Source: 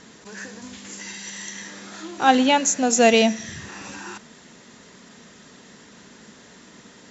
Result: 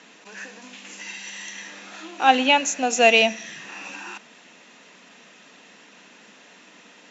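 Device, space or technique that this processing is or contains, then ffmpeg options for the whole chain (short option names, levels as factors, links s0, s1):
television speaker: -af "highpass=f=210:w=0.5412,highpass=f=210:w=1.3066,equalizer=f=230:t=q:w=4:g=-6,equalizer=f=390:t=q:w=4:g=-6,equalizer=f=740:t=q:w=4:g=3,equalizer=f=2600:t=q:w=4:g=10,equalizer=f=4800:t=q:w=4:g=-4,lowpass=f=6700:w=0.5412,lowpass=f=6700:w=1.3066,volume=0.841"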